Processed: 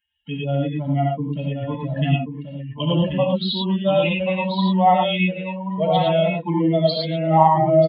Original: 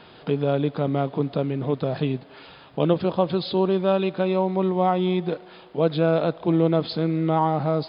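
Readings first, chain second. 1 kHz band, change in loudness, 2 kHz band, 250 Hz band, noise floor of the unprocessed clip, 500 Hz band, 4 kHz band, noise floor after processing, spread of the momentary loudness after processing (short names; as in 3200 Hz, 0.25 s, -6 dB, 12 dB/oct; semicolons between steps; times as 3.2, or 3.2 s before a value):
+7.0 dB, +3.0 dB, +8.0 dB, +2.0 dB, -48 dBFS, +2.0 dB, +8.5 dB, -36 dBFS, 11 LU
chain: per-bin expansion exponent 3; high shelf 2100 Hz +8 dB; in parallel at +1 dB: limiter -19 dBFS, peak gain reduction 8.5 dB; on the sum: fixed phaser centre 1500 Hz, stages 6; notch comb 1200 Hz; on a send: echo 1.084 s -6.5 dB; on the sum: non-linear reverb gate 0.13 s rising, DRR -2 dB; gain +4.5 dB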